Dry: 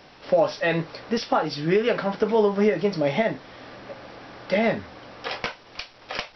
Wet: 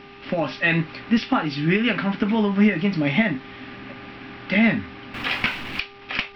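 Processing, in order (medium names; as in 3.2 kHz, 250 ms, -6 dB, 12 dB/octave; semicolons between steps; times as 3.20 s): 5.14–5.80 s: jump at every zero crossing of -31.5 dBFS; mains buzz 400 Hz, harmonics 3, -43 dBFS -7 dB/octave; FFT filter 180 Hz 0 dB, 260 Hz +5 dB, 450 Hz -15 dB, 2.6 kHz +4 dB, 6.7 kHz -16 dB; trim +5.5 dB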